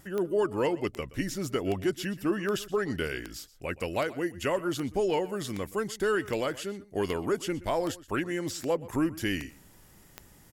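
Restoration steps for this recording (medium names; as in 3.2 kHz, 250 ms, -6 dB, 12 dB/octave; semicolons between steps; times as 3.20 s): de-click; inverse comb 124 ms -19 dB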